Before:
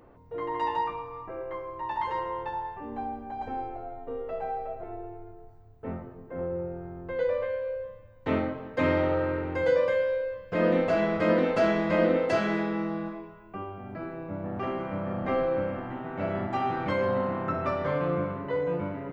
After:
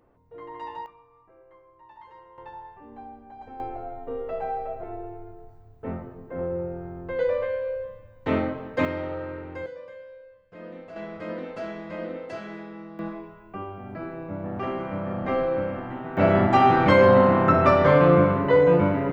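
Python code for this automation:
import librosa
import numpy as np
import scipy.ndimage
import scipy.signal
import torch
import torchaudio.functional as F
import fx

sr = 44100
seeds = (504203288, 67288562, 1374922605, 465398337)

y = fx.gain(x, sr, db=fx.steps((0.0, -8.0), (0.86, -18.0), (2.38, -8.0), (3.6, 3.0), (8.85, -6.0), (9.66, -17.5), (10.96, -10.5), (12.99, 2.0), (16.17, 11.5)))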